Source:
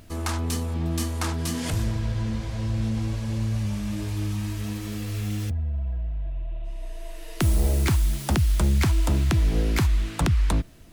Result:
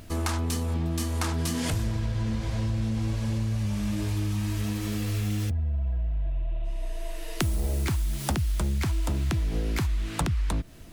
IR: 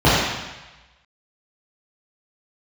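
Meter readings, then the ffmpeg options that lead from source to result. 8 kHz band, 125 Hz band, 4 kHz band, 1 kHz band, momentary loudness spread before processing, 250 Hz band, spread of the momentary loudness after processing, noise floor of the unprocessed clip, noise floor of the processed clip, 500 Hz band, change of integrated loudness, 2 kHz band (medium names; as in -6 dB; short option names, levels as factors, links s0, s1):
-2.0 dB, -2.5 dB, -2.0 dB, -2.0 dB, 10 LU, -2.0 dB, 4 LU, -36 dBFS, -34 dBFS, -2.5 dB, -3.0 dB, -2.5 dB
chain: -af "acompressor=threshold=0.0447:ratio=6,volume=1.41"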